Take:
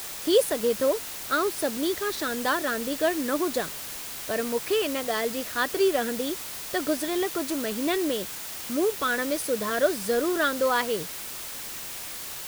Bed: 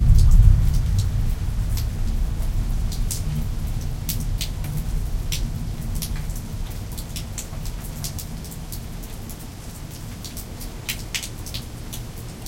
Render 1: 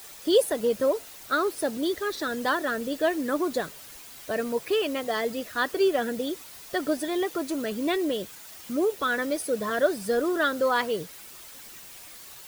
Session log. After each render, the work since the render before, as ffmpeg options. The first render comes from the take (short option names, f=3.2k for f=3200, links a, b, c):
-af "afftdn=nr=10:nf=-37"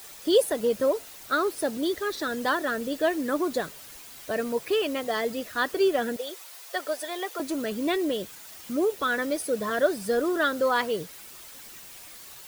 -filter_complex "[0:a]asettb=1/sr,asplit=3[a][b][c];[a]atrim=end=6.164[d];[b]atrim=start=6.16:end=7.4,asetpts=PTS-STARTPTS,afade=t=in:d=0.004:c=qsin,afade=t=out:st=1.236:d=0.004:c=qsin,highpass=f=470:w=0.5412,highpass=f=470:w=1.3066[e];[c]atrim=start=7.396[f];[d][e]acrossfade=d=0.004:c1=hsin:c2=qsin[g];[g][f]acrossfade=d=0.004:c1=qsin:c2=hsin"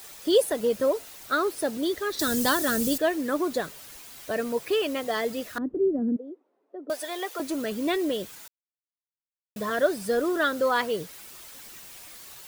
-filter_complex "[0:a]asettb=1/sr,asplit=3[a][b][c];[a]atrim=end=2.194[d];[b]atrim=start=2.19:end=2.98,asetpts=PTS-STARTPTS,afade=t=in:d=0.004:c=qsin,afade=t=out:st=0.786:d=0.004:c=qsin,bass=f=250:g=13,treble=f=4k:g=15[e];[c]atrim=start=2.976[f];[d][e]acrossfade=d=0.004:c1=hsin:c2=qsin[g];[g][f]acrossfade=d=0.004:c1=qsin:c2=hsin,asettb=1/sr,asplit=3[h][i][j];[h]atrim=end=5.584[k];[i]atrim=start=5.58:end=6.9,asetpts=PTS-STARTPTS,afade=t=in:d=0.004:c=qsin,afade=t=out:st=1.316:d=0.004:c=qsin,lowpass=f=270:t=q:w=3[l];[j]atrim=start=6.896[m];[k][l]acrossfade=d=0.004:c1=hsin:c2=qsin[n];[n][m]acrossfade=d=0.004:c1=qsin:c2=hsin,asplit=3[o][p][q];[o]atrim=end=8.48,asetpts=PTS-STARTPTS,afade=t=out:st=8.476:d=0.004:c=hsin[r];[p]atrim=start=8.48:end=9.56,asetpts=PTS-STARTPTS,volume=0[s];[q]atrim=start=9.56,asetpts=PTS-STARTPTS,afade=t=in:d=0.004:c=hsin[t];[r][s][t]concat=n=3:v=0:a=1"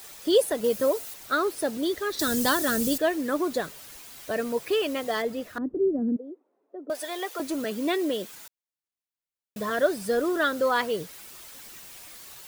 -filter_complex "[0:a]asettb=1/sr,asplit=3[a][b][c];[a]atrim=end=0.644[d];[b]atrim=start=0.64:end=1.14,asetpts=PTS-STARTPTS,afade=t=in:d=0.004:c=qsin,afade=t=out:st=0.496:d=0.004:c=qsin,highshelf=f=6.6k:g=8[e];[c]atrim=start=1.136[f];[d][e]acrossfade=d=0.004:c1=hsin:c2=qsin[g];[g][f]acrossfade=d=0.004:c1=qsin:c2=hsin,asettb=1/sr,asplit=3[h][i][j];[h]atrim=end=5.224[k];[i]atrim=start=5.22:end=6.95,asetpts=PTS-STARTPTS,afade=t=in:d=0.004:c=qsin,afade=t=out:st=1.726:d=0.004:c=qsin,highshelf=f=2.3k:g=-8[l];[j]atrim=start=6.946[m];[k][l]acrossfade=d=0.004:c1=hsin:c2=qsin[n];[n][m]acrossfade=d=0.004:c1=qsin:c2=hsin,asettb=1/sr,asplit=3[o][p][q];[o]atrim=end=7.644[r];[p]atrim=start=7.64:end=8.33,asetpts=PTS-STARTPTS,afade=t=in:d=0.004:c=qsin,afade=t=out:st=0.686:d=0.004:c=qsin,highpass=f=170:w=0.5412,highpass=f=170:w=1.3066[s];[q]atrim=start=8.326[t];[r][s]acrossfade=d=0.004:c1=hsin:c2=qsin[u];[u][t]acrossfade=d=0.004:c1=qsin:c2=hsin"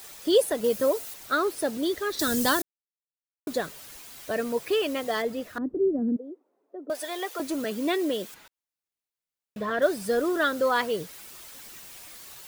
-filter_complex "[0:a]asettb=1/sr,asplit=3[a][b][c];[a]atrim=end=8.344[d];[b]atrim=start=8.34:end=9.82,asetpts=PTS-STARTPTS,afade=t=in:d=0.004:c=qsin,afade=t=out:st=1.476:d=0.004:c=qsin,acrossover=split=3900[e][f];[f]acompressor=threshold=-58dB:ratio=4:attack=1:release=60[g];[e][g]amix=inputs=2:normalize=0[h];[c]atrim=start=9.816[i];[d][h]acrossfade=d=0.004:c1=hsin:c2=qsin[j];[j][i]acrossfade=d=0.004:c1=qsin:c2=hsin,asplit=3[k][l][m];[k]atrim=end=2.62,asetpts=PTS-STARTPTS,afade=t=out:st=2.616:d=0.004:c=hsin[n];[l]atrim=start=2.62:end=3.47,asetpts=PTS-STARTPTS,volume=0[o];[m]atrim=start=3.47,asetpts=PTS-STARTPTS,afade=t=in:d=0.004:c=hsin[p];[n][o][p]concat=n=3:v=0:a=1"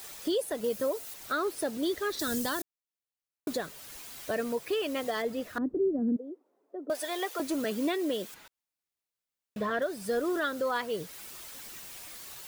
-af "alimiter=limit=-21.5dB:level=0:latency=1:release=431"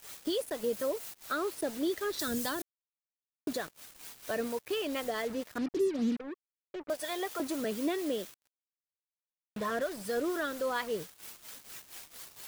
-filter_complex "[0:a]acrossover=split=650[a][b];[a]aeval=exprs='val(0)*(1-0.5/2+0.5/2*cos(2*PI*4.3*n/s))':c=same[c];[b]aeval=exprs='val(0)*(1-0.5/2-0.5/2*cos(2*PI*4.3*n/s))':c=same[d];[c][d]amix=inputs=2:normalize=0,acrusher=bits=6:mix=0:aa=0.5"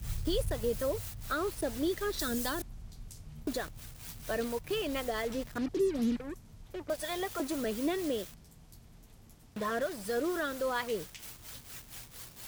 -filter_complex "[1:a]volume=-23dB[a];[0:a][a]amix=inputs=2:normalize=0"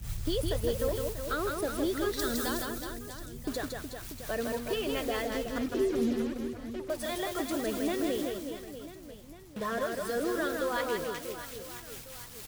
-af "aecho=1:1:160|368|638.4|989.9|1447:0.631|0.398|0.251|0.158|0.1"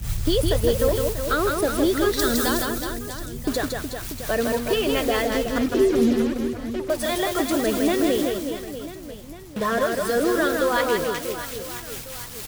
-af "volume=10dB"